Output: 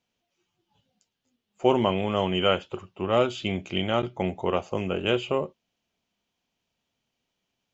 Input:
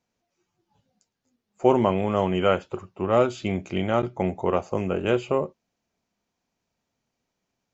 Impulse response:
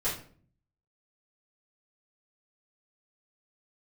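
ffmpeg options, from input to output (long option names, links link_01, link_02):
-af "equalizer=frequency=3100:width_type=o:width=0.63:gain=11,volume=-2.5dB"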